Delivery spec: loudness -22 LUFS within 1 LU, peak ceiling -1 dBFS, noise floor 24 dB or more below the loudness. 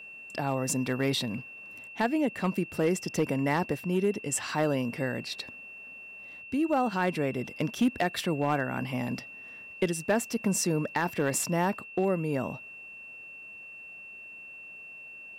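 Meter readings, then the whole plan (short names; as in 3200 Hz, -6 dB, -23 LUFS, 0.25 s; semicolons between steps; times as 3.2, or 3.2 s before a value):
clipped 0.3%; flat tops at -18.5 dBFS; steady tone 2700 Hz; tone level -43 dBFS; loudness -29.5 LUFS; peak -18.5 dBFS; loudness target -22.0 LUFS
-> clip repair -18.5 dBFS; notch 2700 Hz, Q 30; gain +7.5 dB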